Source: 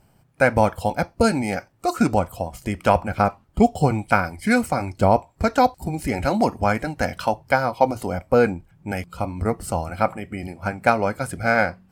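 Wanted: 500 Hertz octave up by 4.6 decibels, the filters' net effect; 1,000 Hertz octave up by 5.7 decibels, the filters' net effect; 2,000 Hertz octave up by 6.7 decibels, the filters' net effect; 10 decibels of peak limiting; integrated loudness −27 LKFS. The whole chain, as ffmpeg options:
ffmpeg -i in.wav -af "equalizer=frequency=500:width_type=o:gain=3.5,equalizer=frequency=1000:width_type=o:gain=5,equalizer=frequency=2000:width_type=o:gain=7,volume=-5.5dB,alimiter=limit=-12dB:level=0:latency=1" out.wav

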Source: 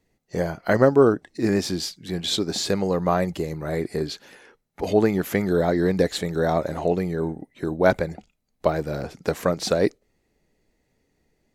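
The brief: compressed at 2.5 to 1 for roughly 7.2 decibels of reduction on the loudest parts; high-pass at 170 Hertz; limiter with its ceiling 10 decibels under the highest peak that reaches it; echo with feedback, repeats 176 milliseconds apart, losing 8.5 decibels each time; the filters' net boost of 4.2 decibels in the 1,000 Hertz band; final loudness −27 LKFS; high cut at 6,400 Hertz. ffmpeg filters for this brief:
ffmpeg -i in.wav -af "highpass=170,lowpass=6400,equalizer=frequency=1000:width_type=o:gain=6,acompressor=threshold=-20dB:ratio=2.5,alimiter=limit=-15dB:level=0:latency=1,aecho=1:1:176|352|528|704:0.376|0.143|0.0543|0.0206,volume=0.5dB" out.wav

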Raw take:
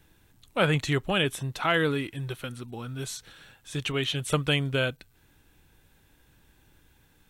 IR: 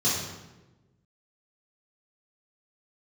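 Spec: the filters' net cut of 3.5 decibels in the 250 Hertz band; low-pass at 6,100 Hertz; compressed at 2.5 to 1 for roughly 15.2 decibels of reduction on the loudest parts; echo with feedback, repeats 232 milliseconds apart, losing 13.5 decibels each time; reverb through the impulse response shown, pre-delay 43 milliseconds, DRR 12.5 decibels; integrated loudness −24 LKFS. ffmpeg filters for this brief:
-filter_complex "[0:a]lowpass=6100,equalizer=frequency=250:width_type=o:gain=-5.5,acompressor=threshold=-44dB:ratio=2.5,aecho=1:1:232|464:0.211|0.0444,asplit=2[link_01][link_02];[1:a]atrim=start_sample=2205,adelay=43[link_03];[link_02][link_03]afir=irnorm=-1:irlink=0,volume=-24dB[link_04];[link_01][link_04]amix=inputs=2:normalize=0,volume=17.5dB"

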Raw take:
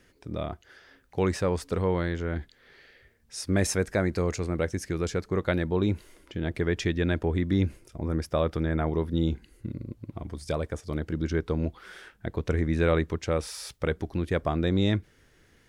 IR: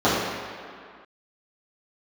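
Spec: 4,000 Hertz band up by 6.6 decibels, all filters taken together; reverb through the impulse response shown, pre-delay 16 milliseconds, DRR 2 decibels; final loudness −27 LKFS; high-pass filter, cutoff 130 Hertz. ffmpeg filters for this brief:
-filter_complex "[0:a]highpass=130,equalizer=frequency=4000:width_type=o:gain=8,asplit=2[link_01][link_02];[1:a]atrim=start_sample=2205,adelay=16[link_03];[link_02][link_03]afir=irnorm=-1:irlink=0,volume=-24.5dB[link_04];[link_01][link_04]amix=inputs=2:normalize=0,volume=-1dB"

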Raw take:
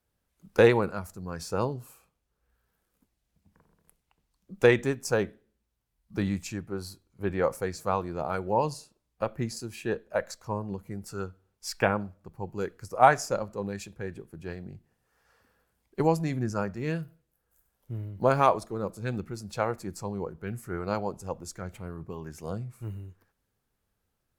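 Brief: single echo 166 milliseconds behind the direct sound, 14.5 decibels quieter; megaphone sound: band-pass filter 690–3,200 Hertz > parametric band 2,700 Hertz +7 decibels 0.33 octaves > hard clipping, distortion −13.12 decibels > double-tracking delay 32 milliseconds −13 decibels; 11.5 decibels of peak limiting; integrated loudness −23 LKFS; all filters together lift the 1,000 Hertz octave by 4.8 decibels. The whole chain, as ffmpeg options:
ffmpeg -i in.wav -filter_complex "[0:a]equalizer=frequency=1000:width_type=o:gain=8,alimiter=limit=-10.5dB:level=0:latency=1,highpass=690,lowpass=3200,equalizer=frequency=2700:width_type=o:width=0.33:gain=7,aecho=1:1:166:0.188,asoftclip=type=hard:threshold=-19.5dB,asplit=2[link_01][link_02];[link_02]adelay=32,volume=-13dB[link_03];[link_01][link_03]amix=inputs=2:normalize=0,volume=10.5dB" out.wav

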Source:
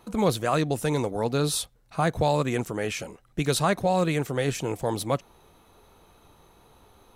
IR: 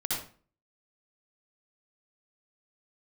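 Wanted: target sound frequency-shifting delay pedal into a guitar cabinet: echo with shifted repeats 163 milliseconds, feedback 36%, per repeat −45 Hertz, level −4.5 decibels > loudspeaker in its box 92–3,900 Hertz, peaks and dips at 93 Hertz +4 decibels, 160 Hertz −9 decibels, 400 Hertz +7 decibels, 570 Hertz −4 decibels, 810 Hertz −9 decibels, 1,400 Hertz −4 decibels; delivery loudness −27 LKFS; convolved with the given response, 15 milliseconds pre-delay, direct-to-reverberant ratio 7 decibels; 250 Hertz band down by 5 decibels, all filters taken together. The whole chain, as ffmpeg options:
-filter_complex "[0:a]equalizer=frequency=250:width_type=o:gain=-6.5,asplit=2[link_01][link_02];[1:a]atrim=start_sample=2205,adelay=15[link_03];[link_02][link_03]afir=irnorm=-1:irlink=0,volume=-13dB[link_04];[link_01][link_04]amix=inputs=2:normalize=0,asplit=6[link_05][link_06][link_07][link_08][link_09][link_10];[link_06]adelay=163,afreqshift=-45,volume=-4.5dB[link_11];[link_07]adelay=326,afreqshift=-90,volume=-13.4dB[link_12];[link_08]adelay=489,afreqshift=-135,volume=-22.2dB[link_13];[link_09]adelay=652,afreqshift=-180,volume=-31.1dB[link_14];[link_10]adelay=815,afreqshift=-225,volume=-40dB[link_15];[link_05][link_11][link_12][link_13][link_14][link_15]amix=inputs=6:normalize=0,highpass=92,equalizer=frequency=93:width_type=q:width=4:gain=4,equalizer=frequency=160:width_type=q:width=4:gain=-9,equalizer=frequency=400:width_type=q:width=4:gain=7,equalizer=frequency=570:width_type=q:width=4:gain=-4,equalizer=frequency=810:width_type=q:width=4:gain=-9,equalizer=frequency=1400:width_type=q:width=4:gain=-4,lowpass=frequency=3900:width=0.5412,lowpass=frequency=3900:width=1.3066"

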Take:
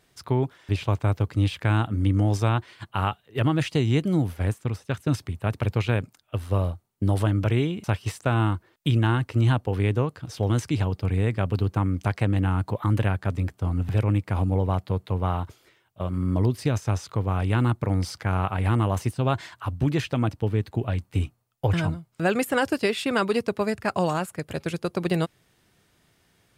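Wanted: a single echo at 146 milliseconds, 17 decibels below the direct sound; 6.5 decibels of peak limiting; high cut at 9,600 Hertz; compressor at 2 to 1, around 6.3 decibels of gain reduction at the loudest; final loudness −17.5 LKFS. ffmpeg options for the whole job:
ffmpeg -i in.wav -af "lowpass=9600,acompressor=threshold=-29dB:ratio=2,alimiter=limit=-19dB:level=0:latency=1,aecho=1:1:146:0.141,volume=14.5dB" out.wav

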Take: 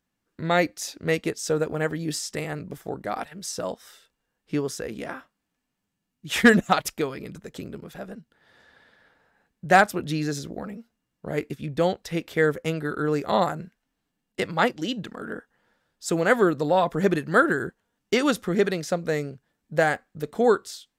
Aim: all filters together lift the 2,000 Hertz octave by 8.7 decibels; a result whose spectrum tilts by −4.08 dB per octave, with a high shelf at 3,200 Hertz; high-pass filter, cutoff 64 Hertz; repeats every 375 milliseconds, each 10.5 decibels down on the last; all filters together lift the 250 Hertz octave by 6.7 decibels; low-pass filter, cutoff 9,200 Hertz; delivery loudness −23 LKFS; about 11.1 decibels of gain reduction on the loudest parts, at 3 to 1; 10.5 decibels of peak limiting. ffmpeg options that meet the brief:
ffmpeg -i in.wav -af "highpass=64,lowpass=9200,equalizer=frequency=250:width_type=o:gain=8.5,equalizer=frequency=2000:width_type=o:gain=8.5,highshelf=frequency=3200:gain=9,acompressor=threshold=-17dB:ratio=3,alimiter=limit=-14.5dB:level=0:latency=1,aecho=1:1:375|750|1125:0.299|0.0896|0.0269,volume=4dB" out.wav

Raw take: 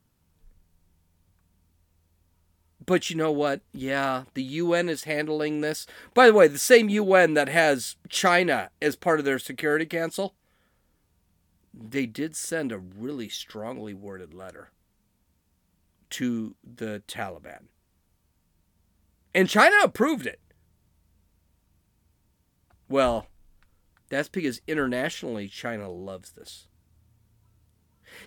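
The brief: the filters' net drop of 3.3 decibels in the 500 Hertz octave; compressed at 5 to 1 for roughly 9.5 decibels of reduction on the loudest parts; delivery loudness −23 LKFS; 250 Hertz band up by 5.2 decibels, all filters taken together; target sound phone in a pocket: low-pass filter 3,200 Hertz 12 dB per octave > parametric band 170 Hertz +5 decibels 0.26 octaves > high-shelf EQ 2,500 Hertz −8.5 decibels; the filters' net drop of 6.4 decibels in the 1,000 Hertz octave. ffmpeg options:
ffmpeg -i in.wav -af "equalizer=frequency=250:width_type=o:gain=7.5,equalizer=frequency=500:width_type=o:gain=-4,equalizer=frequency=1000:width_type=o:gain=-7,acompressor=threshold=-22dB:ratio=5,lowpass=3200,equalizer=frequency=170:width_type=o:width=0.26:gain=5,highshelf=frequency=2500:gain=-8.5,volume=6.5dB" out.wav

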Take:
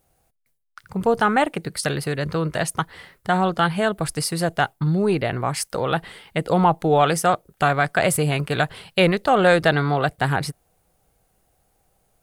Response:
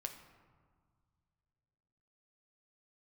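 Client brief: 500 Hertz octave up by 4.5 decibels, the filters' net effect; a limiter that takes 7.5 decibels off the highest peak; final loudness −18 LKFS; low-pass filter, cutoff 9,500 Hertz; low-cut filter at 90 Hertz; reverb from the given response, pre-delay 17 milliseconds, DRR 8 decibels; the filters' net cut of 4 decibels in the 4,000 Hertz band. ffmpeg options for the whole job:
-filter_complex "[0:a]highpass=90,lowpass=9500,equalizer=frequency=500:width_type=o:gain=5.5,equalizer=frequency=4000:width_type=o:gain=-5.5,alimiter=limit=-10dB:level=0:latency=1,asplit=2[link_01][link_02];[1:a]atrim=start_sample=2205,adelay=17[link_03];[link_02][link_03]afir=irnorm=-1:irlink=0,volume=-5.5dB[link_04];[link_01][link_04]amix=inputs=2:normalize=0,volume=3.5dB"

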